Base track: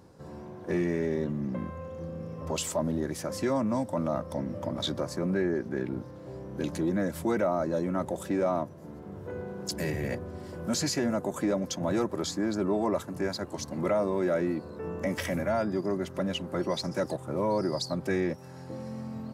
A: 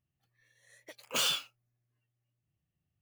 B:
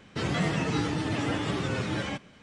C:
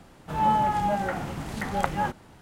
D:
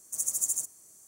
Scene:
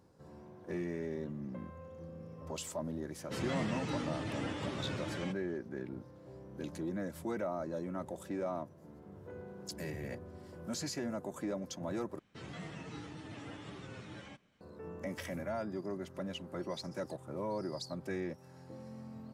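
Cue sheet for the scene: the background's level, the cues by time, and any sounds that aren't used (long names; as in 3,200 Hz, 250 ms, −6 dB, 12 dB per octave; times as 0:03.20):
base track −10 dB
0:03.15: mix in B −10 dB
0:12.19: overwrite with B −18 dB + notch filter 4,800 Hz, Q 28
not used: A, C, D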